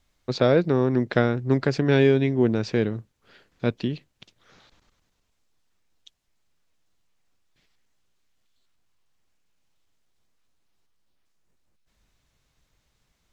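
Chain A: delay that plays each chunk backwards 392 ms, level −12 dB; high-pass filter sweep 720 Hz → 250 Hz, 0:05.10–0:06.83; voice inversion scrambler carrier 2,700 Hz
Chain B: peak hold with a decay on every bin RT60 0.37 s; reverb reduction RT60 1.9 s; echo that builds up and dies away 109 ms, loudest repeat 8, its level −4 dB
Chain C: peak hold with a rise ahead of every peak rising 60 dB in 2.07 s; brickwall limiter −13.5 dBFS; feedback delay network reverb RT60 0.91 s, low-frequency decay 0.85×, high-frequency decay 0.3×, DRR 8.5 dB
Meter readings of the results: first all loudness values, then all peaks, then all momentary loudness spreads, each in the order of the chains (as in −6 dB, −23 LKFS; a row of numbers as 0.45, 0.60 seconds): −23.5, −19.5, −24.0 LKFS; −6.5, −2.5, −9.5 dBFS; 23, 17, 6 LU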